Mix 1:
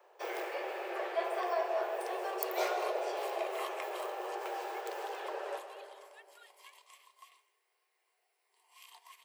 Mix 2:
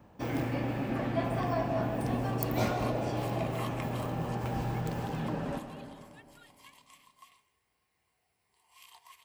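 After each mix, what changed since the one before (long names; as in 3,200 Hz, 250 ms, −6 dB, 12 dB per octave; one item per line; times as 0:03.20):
master: remove Chebyshev high-pass filter 360 Hz, order 8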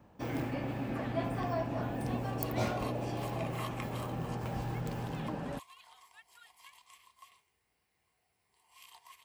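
reverb: off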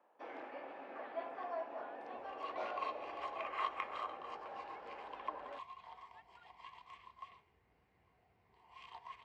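first sound: add Bessel high-pass filter 700 Hz, order 4
second sound +10.5 dB
master: add head-to-tape spacing loss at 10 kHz 41 dB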